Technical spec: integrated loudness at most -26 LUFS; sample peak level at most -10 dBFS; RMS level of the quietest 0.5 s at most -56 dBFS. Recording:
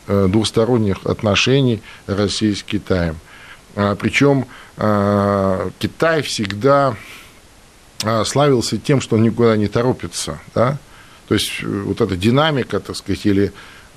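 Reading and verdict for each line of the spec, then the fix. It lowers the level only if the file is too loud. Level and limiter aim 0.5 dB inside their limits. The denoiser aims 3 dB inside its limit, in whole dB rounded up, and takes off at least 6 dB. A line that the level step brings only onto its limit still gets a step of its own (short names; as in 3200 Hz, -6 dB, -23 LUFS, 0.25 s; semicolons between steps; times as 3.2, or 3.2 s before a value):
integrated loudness -17.5 LUFS: fail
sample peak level -2.5 dBFS: fail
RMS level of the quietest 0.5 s -46 dBFS: fail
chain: denoiser 6 dB, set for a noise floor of -46 dBFS; gain -9 dB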